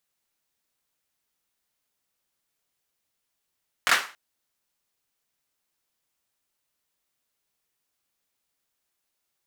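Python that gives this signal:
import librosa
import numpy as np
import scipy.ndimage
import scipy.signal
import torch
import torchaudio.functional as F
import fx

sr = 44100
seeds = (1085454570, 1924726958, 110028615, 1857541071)

y = fx.drum_clap(sr, seeds[0], length_s=0.28, bursts=3, spacing_ms=22, hz=1500.0, decay_s=0.35)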